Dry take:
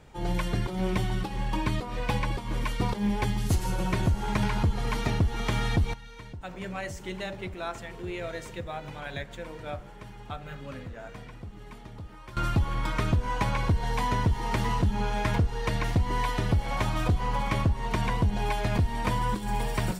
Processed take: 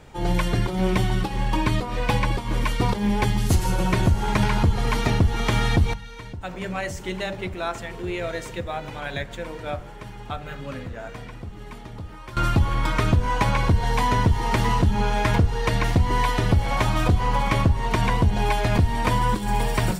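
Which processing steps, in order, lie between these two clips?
notches 50/100/150/200 Hz; gain +6.5 dB

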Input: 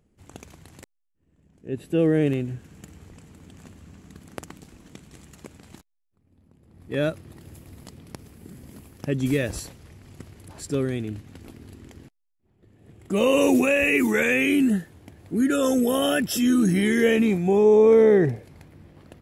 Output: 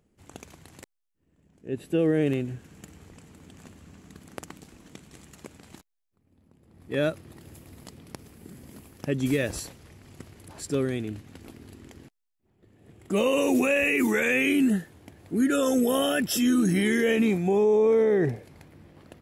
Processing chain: low shelf 160 Hz -5.5 dB; limiter -15 dBFS, peak gain reduction 6 dB

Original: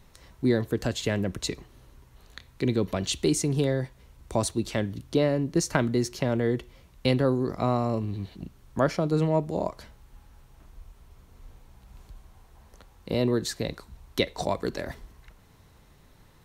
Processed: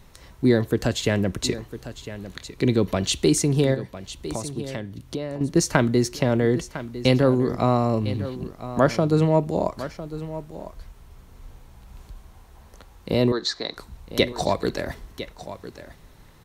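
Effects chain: 3.74–5.41 compressor 2.5:1, threshold -38 dBFS, peak gain reduction 13 dB; 13.32–13.77 speaker cabinet 410–5800 Hz, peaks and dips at 530 Hz -7 dB, 1200 Hz +4 dB, 2700 Hz -10 dB, 4000 Hz +7 dB; echo 1.004 s -13.5 dB; gain +5 dB

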